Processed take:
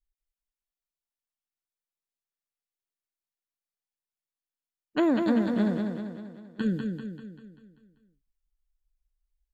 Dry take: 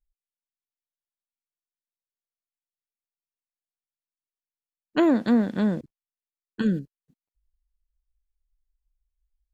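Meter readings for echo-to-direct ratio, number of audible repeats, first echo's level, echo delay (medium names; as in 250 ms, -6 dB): -3.5 dB, 6, -5.0 dB, 195 ms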